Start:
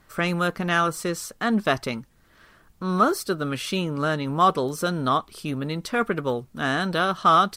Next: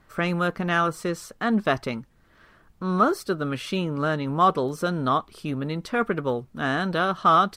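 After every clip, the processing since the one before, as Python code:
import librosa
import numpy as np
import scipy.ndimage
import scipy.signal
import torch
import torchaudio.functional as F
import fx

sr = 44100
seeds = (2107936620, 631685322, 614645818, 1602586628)

y = fx.high_shelf(x, sr, hz=4000.0, db=-9.0)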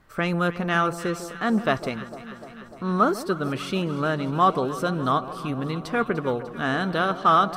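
y = fx.echo_alternate(x, sr, ms=149, hz=1000.0, feedback_pct=83, wet_db=-13)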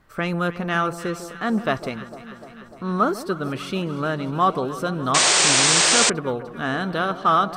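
y = fx.spec_paint(x, sr, seeds[0], shape='noise', start_s=5.14, length_s=0.96, low_hz=320.0, high_hz=9000.0, level_db=-17.0)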